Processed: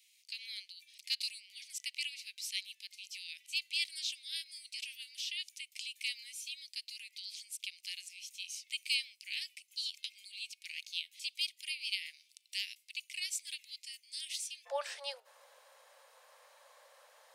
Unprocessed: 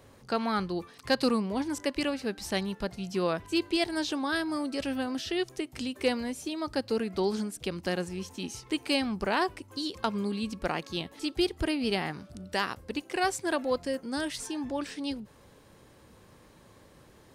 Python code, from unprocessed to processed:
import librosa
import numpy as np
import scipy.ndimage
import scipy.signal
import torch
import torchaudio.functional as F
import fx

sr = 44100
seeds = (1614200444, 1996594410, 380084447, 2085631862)

y = fx.steep_highpass(x, sr, hz=fx.steps((0.0, 2200.0), (14.65, 520.0)), slope=72)
y = y * librosa.db_to_amplitude(-1.0)